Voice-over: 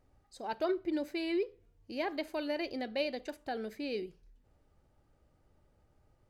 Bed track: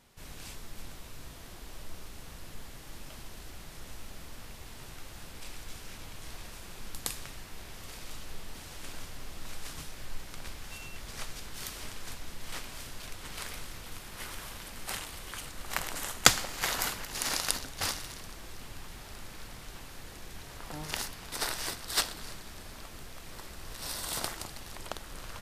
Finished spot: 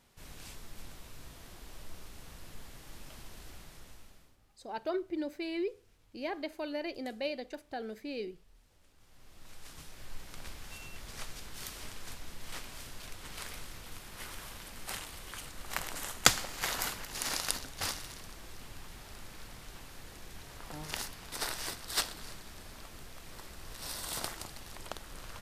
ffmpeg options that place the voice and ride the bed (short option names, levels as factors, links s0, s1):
-filter_complex "[0:a]adelay=4250,volume=0.794[s0];[1:a]volume=8.41,afade=t=out:st=3.52:d=0.85:silence=0.0841395,afade=t=in:st=8.97:d=1.45:silence=0.0794328[s1];[s0][s1]amix=inputs=2:normalize=0"